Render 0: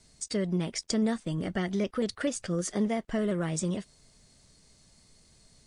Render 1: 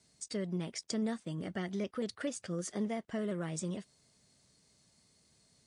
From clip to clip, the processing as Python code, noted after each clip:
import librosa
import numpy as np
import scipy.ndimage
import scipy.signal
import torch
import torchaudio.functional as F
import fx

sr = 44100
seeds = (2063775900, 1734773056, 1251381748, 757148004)

y = scipy.signal.sosfilt(scipy.signal.butter(2, 95.0, 'highpass', fs=sr, output='sos'), x)
y = F.gain(torch.from_numpy(y), -7.0).numpy()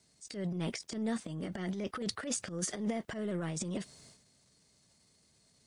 y = fx.transient(x, sr, attack_db=-10, sustain_db=12)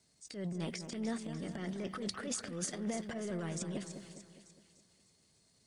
y = fx.echo_split(x, sr, split_hz=2100.0, low_ms=205, high_ms=296, feedback_pct=52, wet_db=-9.0)
y = F.gain(torch.from_numpy(y), -3.0).numpy()